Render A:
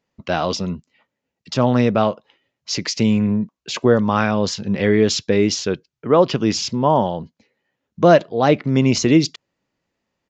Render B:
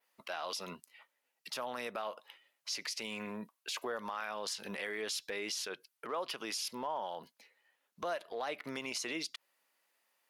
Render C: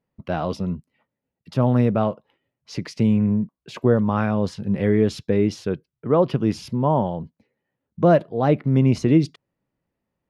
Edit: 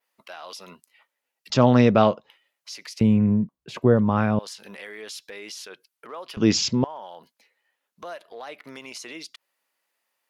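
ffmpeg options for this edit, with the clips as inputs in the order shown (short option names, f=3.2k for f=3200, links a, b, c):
-filter_complex "[0:a]asplit=2[a][b];[1:a]asplit=4[c][d][e][f];[c]atrim=end=1.502[g];[a]atrim=start=1.498:end=2.302[h];[d]atrim=start=2.298:end=3.012[i];[2:a]atrim=start=3.008:end=4.392[j];[e]atrim=start=4.388:end=6.372[k];[b]atrim=start=6.368:end=6.842[l];[f]atrim=start=6.838[m];[g][h]acrossfade=d=0.004:c1=hsin:c2=hsin[n];[n][i]acrossfade=d=0.004:c1=hsin:c2=hsin[o];[o][j]acrossfade=d=0.004:c1=hsin:c2=hsin[p];[p][k]acrossfade=d=0.004:c1=hsin:c2=hsin[q];[q][l]acrossfade=d=0.004:c1=hsin:c2=hsin[r];[r][m]acrossfade=d=0.004:c1=hsin:c2=hsin"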